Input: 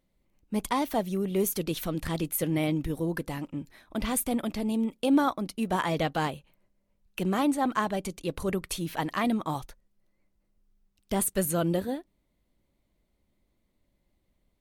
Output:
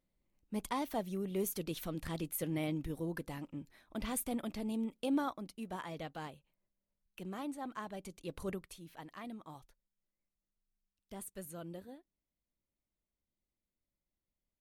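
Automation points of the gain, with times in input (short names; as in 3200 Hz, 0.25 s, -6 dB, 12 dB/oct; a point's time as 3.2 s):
4.98 s -9 dB
5.88 s -16 dB
7.79 s -16 dB
8.49 s -9.5 dB
8.75 s -19.5 dB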